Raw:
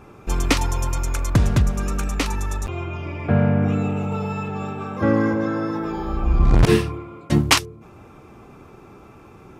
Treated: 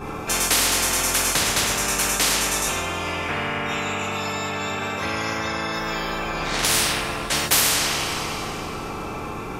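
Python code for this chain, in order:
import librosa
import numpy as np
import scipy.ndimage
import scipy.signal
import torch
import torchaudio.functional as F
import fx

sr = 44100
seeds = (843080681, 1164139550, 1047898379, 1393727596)

y = fx.rev_double_slope(x, sr, seeds[0], early_s=0.61, late_s=2.9, knee_db=-20, drr_db=-6.5)
y = fx.spectral_comp(y, sr, ratio=10.0)
y = F.gain(torch.from_numpy(y), -6.0).numpy()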